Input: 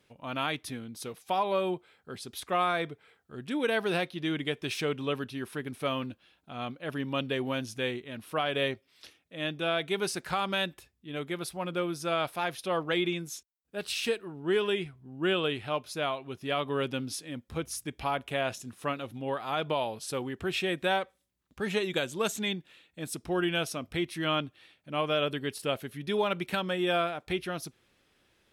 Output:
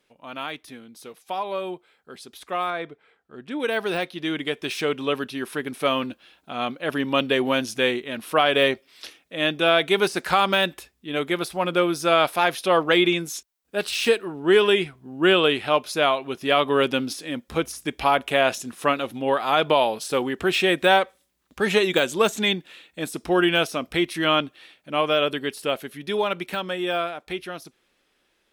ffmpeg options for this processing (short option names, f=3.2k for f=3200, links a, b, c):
-filter_complex "[0:a]asettb=1/sr,asplit=3[a][b][c];[a]atrim=end=2.704[d];[b]atrim=start=2.7:end=3.6,asetpts=PTS-STARTPTS,afade=t=in:d=0.004:c=qsin,afade=t=out:st=0.896:d=0.004:c=qsin,lowpass=f=2.6k:p=1[e];[c]atrim=start=3.596[f];[d][e]acrossfade=d=0.004:c1=hsin:c2=qsin[g];[g][f]acrossfade=d=0.004:c1=qsin:c2=hsin,deesser=0.9,equalizer=f=100:t=o:w=1.3:g=-14.5,dynaudnorm=f=890:g=11:m=12dB"